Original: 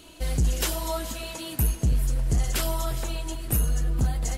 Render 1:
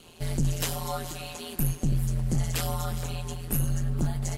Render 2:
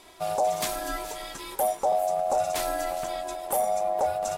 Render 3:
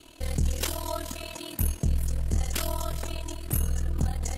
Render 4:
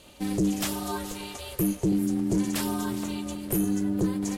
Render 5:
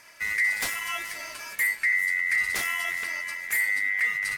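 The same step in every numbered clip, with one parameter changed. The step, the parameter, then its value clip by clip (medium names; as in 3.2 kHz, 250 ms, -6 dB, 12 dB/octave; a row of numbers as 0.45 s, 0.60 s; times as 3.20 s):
ring modulator, frequency: 83 Hz, 680 Hz, 20 Hz, 250 Hz, 2 kHz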